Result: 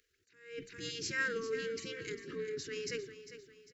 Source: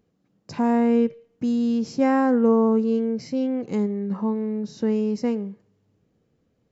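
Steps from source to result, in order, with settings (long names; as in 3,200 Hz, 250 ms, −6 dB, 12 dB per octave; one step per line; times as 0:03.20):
elliptic band-stop filter 350–1,600 Hz, stop band 80 dB
tempo change 1.8×
low-shelf EQ 85 Hz −6.5 dB
mains-hum notches 60/120/180/240/300 Hz
in parallel at +2 dB: brickwall limiter −25.5 dBFS, peak gain reduction 10 dB
on the sum: gate on every frequency bin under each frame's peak −15 dB weak
repeating echo 400 ms, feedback 42%, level −13 dB
level that may rise only so fast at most 110 dB per second
level +1 dB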